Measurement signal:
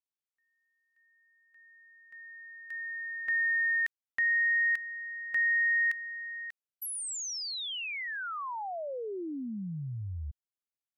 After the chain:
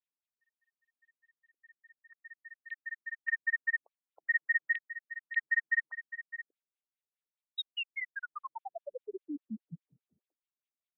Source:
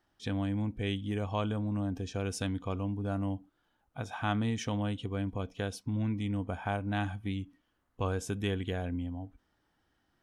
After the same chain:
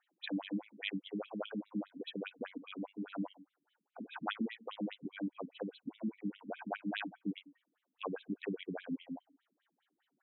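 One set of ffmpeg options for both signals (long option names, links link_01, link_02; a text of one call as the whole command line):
ffmpeg -i in.wav -af "crystalizer=i=2:c=0,afftfilt=real='re*between(b*sr/1024,220*pow(3000/220,0.5+0.5*sin(2*PI*4.9*pts/sr))/1.41,220*pow(3000/220,0.5+0.5*sin(2*PI*4.9*pts/sr))*1.41)':imag='im*between(b*sr/1024,220*pow(3000/220,0.5+0.5*sin(2*PI*4.9*pts/sr))/1.41,220*pow(3000/220,0.5+0.5*sin(2*PI*4.9*pts/sr))*1.41)':win_size=1024:overlap=0.75,volume=1dB" out.wav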